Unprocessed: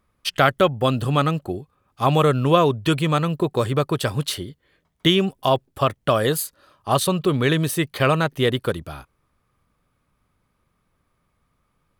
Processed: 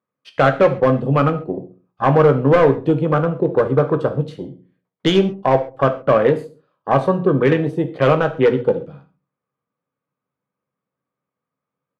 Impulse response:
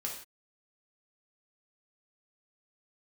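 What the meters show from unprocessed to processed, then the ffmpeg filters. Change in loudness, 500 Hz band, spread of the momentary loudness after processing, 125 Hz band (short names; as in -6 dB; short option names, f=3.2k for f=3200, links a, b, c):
+4.0 dB, +6.5 dB, 11 LU, +2.0 dB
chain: -filter_complex "[0:a]highpass=f=130:w=0.5412,highpass=f=130:w=1.3066,adynamicsmooth=sensitivity=7:basefreq=5.9k,afwtdn=0.0562,equalizer=f=500:w=7.9:g=8,bandreject=f=60:t=h:w=6,bandreject=f=120:t=h:w=6,bandreject=f=180:t=h:w=6,bandreject=f=240:t=h:w=6,bandreject=f=300:t=h:w=6,bandreject=f=360:t=h:w=6,volume=11.5dB,asoftclip=hard,volume=-11.5dB,aemphasis=mode=reproduction:type=75fm,asplit=2[a][b];[b]adelay=15,volume=-13dB[c];[a][c]amix=inputs=2:normalize=0,asplit=2[d][e];[e]adelay=66,lowpass=f=850:p=1,volume=-19dB,asplit=2[f][g];[g]adelay=66,lowpass=f=850:p=1,volume=0.51,asplit=2[h][i];[i]adelay=66,lowpass=f=850:p=1,volume=0.51,asplit=2[j][k];[k]adelay=66,lowpass=f=850:p=1,volume=0.51[l];[d][f][h][j][l]amix=inputs=5:normalize=0,asplit=2[m][n];[1:a]atrim=start_sample=2205,asetrate=57330,aresample=44100[o];[n][o]afir=irnorm=-1:irlink=0,volume=-1dB[p];[m][p]amix=inputs=2:normalize=0"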